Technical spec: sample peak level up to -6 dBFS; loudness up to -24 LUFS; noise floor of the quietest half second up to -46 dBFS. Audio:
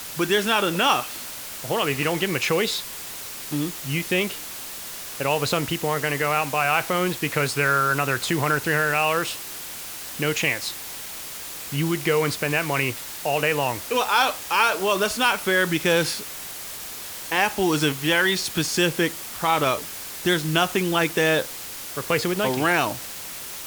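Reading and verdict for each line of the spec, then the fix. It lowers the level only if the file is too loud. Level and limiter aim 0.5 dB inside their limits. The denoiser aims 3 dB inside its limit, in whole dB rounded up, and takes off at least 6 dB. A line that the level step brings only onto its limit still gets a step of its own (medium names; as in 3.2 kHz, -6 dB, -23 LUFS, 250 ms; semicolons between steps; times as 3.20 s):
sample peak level -5.5 dBFS: fail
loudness -23.0 LUFS: fail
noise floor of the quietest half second -35 dBFS: fail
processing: noise reduction 13 dB, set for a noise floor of -35 dBFS; trim -1.5 dB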